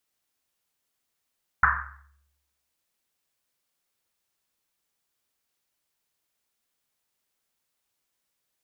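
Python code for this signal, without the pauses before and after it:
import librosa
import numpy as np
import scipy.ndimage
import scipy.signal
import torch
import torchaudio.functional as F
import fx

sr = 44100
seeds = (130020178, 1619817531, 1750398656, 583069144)

y = fx.risset_drum(sr, seeds[0], length_s=1.1, hz=70.0, decay_s=0.99, noise_hz=1400.0, noise_width_hz=730.0, noise_pct=80)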